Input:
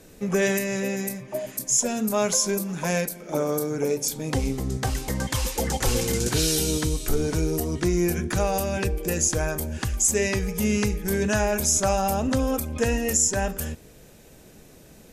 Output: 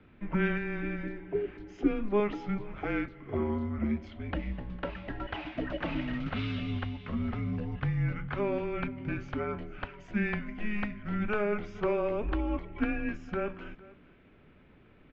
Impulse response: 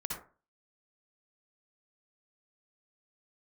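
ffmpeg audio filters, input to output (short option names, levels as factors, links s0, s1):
-filter_complex "[0:a]asettb=1/sr,asplit=3[s0][s1][s2];[s0]atrim=end=1.034[s3];[s1]atrim=start=1.03:end=2.2,asetpts=PTS-STARTPTS,afade=t=in:d=0.004:c=qsin,afade=t=out:st=1.166:d=0.004:c=qsin,equalizer=f=510:t=o:w=0.4:g=12[s4];[s2]atrim=start=2.196[s5];[s3][s4]acrossfade=d=0.004:c1=hsin:c2=qsin[s6];[s6][s5]acrossfade=d=0.004:c1=qsin:c2=hsin,aecho=1:1:455:0.0891,highpass=f=220:t=q:w=0.5412,highpass=f=220:t=q:w=1.307,lowpass=f=3100:t=q:w=0.5176,lowpass=f=3100:t=q:w=0.7071,lowpass=f=3100:t=q:w=1.932,afreqshift=-210,volume=0.562"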